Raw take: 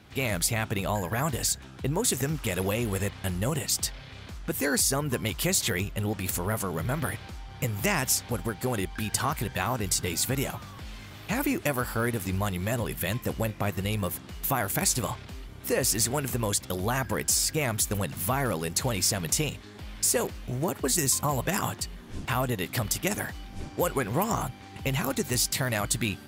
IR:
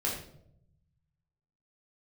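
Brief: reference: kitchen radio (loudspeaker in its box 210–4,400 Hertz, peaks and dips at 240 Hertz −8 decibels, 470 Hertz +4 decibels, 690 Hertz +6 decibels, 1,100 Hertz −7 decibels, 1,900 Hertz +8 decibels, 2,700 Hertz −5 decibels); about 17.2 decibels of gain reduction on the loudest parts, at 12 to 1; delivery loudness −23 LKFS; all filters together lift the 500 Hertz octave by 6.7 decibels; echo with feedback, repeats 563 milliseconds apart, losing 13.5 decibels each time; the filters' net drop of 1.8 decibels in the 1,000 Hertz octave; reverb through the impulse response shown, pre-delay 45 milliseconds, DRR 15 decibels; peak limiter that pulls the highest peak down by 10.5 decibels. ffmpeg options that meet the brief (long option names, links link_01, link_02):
-filter_complex "[0:a]equalizer=frequency=500:width_type=o:gain=6.5,equalizer=frequency=1000:width_type=o:gain=-8,acompressor=threshold=-36dB:ratio=12,alimiter=level_in=7.5dB:limit=-24dB:level=0:latency=1,volume=-7.5dB,aecho=1:1:563|1126:0.211|0.0444,asplit=2[link_01][link_02];[1:a]atrim=start_sample=2205,adelay=45[link_03];[link_02][link_03]afir=irnorm=-1:irlink=0,volume=-21dB[link_04];[link_01][link_04]amix=inputs=2:normalize=0,highpass=210,equalizer=frequency=240:width_type=q:width=4:gain=-8,equalizer=frequency=470:width_type=q:width=4:gain=4,equalizer=frequency=690:width_type=q:width=4:gain=6,equalizer=frequency=1100:width_type=q:width=4:gain=-7,equalizer=frequency=1900:width_type=q:width=4:gain=8,equalizer=frequency=2700:width_type=q:width=4:gain=-5,lowpass=frequency=4400:width=0.5412,lowpass=frequency=4400:width=1.3066,volume=20.5dB"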